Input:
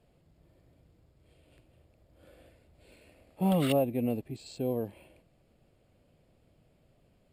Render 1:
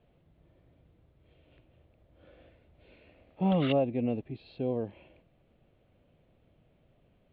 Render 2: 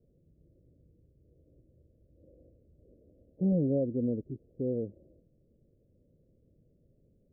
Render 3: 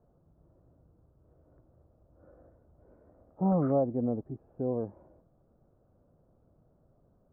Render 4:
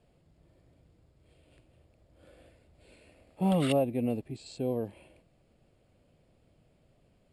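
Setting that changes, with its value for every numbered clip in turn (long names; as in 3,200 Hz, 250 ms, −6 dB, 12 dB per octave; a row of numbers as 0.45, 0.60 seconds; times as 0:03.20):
Butterworth low-pass, frequency: 3,800, 540, 1,400, 11,000 Hertz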